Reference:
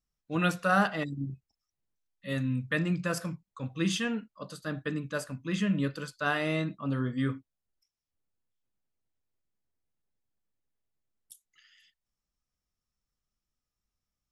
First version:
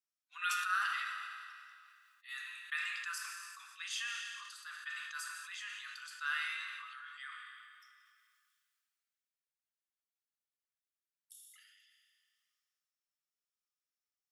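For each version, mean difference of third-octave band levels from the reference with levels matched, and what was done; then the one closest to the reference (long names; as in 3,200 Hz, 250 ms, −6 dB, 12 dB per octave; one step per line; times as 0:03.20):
20.0 dB: flanger 0.24 Hz, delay 6.4 ms, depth 8.8 ms, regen +57%
Butterworth high-pass 1,200 Hz 48 dB per octave
four-comb reverb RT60 1.6 s, combs from 25 ms, DRR 7 dB
level that may fall only so fast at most 26 dB per second
level −2.5 dB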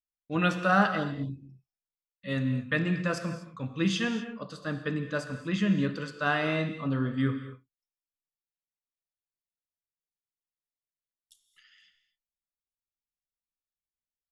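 4.0 dB: healed spectral selection 0:01.02–0:01.33, 1,100–2,900 Hz after
low-pass filter 5,500 Hz 12 dB per octave
noise gate with hold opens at −59 dBFS
reverb whose tail is shaped and stops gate 270 ms flat, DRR 8.5 dB
level +1.5 dB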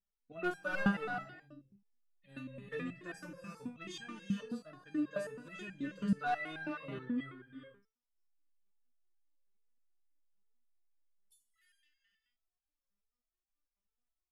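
8.5 dB: wavefolder on the positive side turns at −18.5 dBFS
high-shelf EQ 3,300 Hz −11 dB
reverb whose tail is shaped and stops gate 450 ms rising, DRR 7 dB
step-sequenced resonator 9.3 Hz 200–800 Hz
level +7.5 dB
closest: second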